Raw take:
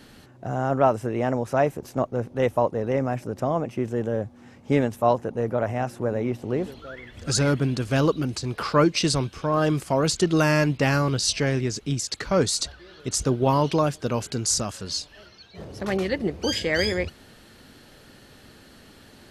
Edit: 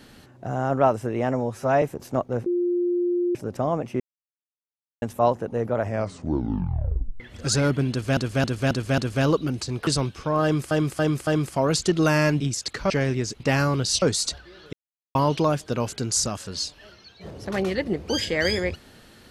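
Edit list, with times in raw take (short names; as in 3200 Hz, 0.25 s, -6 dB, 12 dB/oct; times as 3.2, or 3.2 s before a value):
1.31–1.65 stretch 1.5×
2.29–3.18 bleep 352 Hz -20 dBFS
3.83–4.85 mute
5.63 tape stop 1.40 s
7.73–8 loop, 5 plays
8.62–9.05 cut
9.61–9.89 loop, 4 plays
10.74–11.36 swap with 11.86–12.36
13.07–13.49 mute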